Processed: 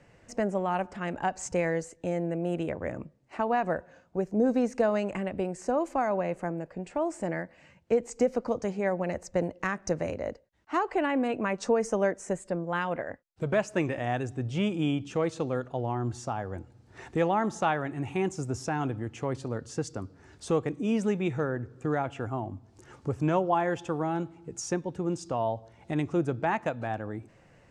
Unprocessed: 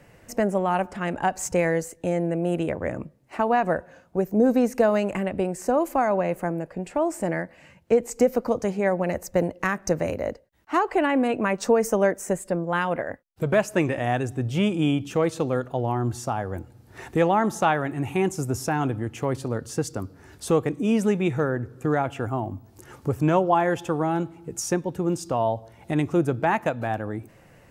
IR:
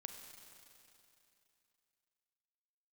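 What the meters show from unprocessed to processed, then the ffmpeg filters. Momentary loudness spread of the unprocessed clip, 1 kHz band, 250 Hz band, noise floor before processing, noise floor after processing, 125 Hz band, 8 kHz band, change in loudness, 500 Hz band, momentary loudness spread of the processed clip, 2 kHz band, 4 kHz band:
10 LU, -5.5 dB, -5.5 dB, -54 dBFS, -60 dBFS, -5.5 dB, -7.0 dB, -5.5 dB, -5.5 dB, 10 LU, -5.5 dB, -5.5 dB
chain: -af "lowpass=f=8.1k:w=0.5412,lowpass=f=8.1k:w=1.3066,volume=-5.5dB"

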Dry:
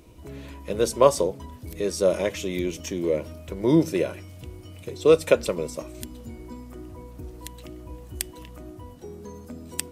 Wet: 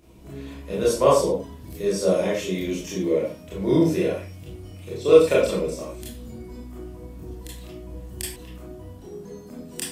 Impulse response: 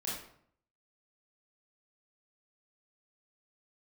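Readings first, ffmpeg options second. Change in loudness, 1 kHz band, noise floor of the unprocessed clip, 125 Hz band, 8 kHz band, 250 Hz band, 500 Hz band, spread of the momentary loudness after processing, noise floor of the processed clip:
+2.0 dB, +1.5 dB, -44 dBFS, +2.0 dB, 0.0 dB, +1.5 dB, +2.5 dB, 21 LU, -43 dBFS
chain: -filter_complex "[1:a]atrim=start_sample=2205,atrim=end_sample=6615[a];[0:a][a]afir=irnorm=-1:irlink=0,volume=-1dB"

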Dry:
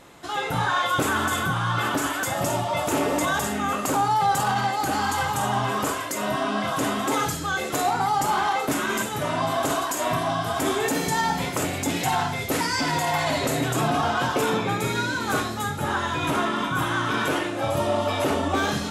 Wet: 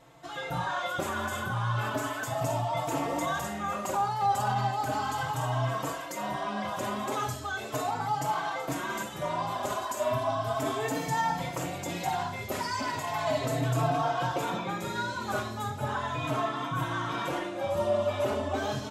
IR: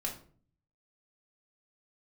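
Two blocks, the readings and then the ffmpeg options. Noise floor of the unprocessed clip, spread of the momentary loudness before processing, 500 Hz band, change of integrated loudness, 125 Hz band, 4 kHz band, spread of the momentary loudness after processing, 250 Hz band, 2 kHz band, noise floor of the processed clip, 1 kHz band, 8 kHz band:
-30 dBFS, 3 LU, -5.0 dB, -6.5 dB, -3.5 dB, -9.5 dB, 6 LU, -8.5 dB, -9.0 dB, -38 dBFS, -6.0 dB, -10.5 dB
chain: -filter_complex "[0:a]equalizer=f=125:t=o:w=0.33:g=9,equalizer=f=630:t=o:w=0.33:g=8,equalizer=f=1k:t=o:w=0.33:g=5,equalizer=f=10k:t=o:w=0.33:g=-6,asplit=2[a][b];[b]adelay=4,afreqshift=0.36[c];[a][c]amix=inputs=2:normalize=1,volume=-6.5dB"

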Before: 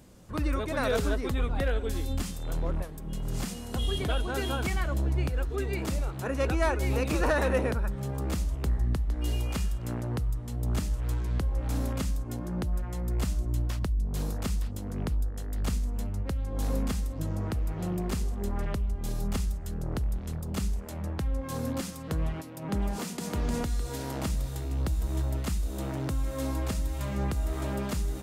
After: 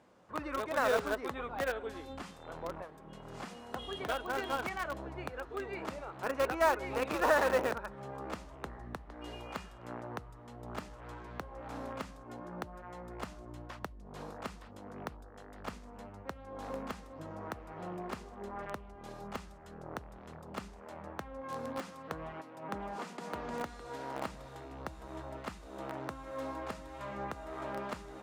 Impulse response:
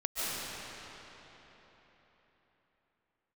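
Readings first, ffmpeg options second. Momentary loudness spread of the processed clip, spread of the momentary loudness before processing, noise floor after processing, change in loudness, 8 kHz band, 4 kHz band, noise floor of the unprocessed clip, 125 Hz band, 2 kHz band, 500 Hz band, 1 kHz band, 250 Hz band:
15 LU, 6 LU, -52 dBFS, -7.5 dB, -11.5 dB, -7.5 dB, -38 dBFS, -19.5 dB, -1.5 dB, -2.5 dB, +1.0 dB, -10.5 dB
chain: -filter_complex "[0:a]bandpass=f=1k:t=q:w=0.9:csg=0,asplit=2[a][b];[b]acrusher=bits=4:mix=0:aa=0.000001,volume=-9.5dB[c];[a][c]amix=inputs=2:normalize=0"

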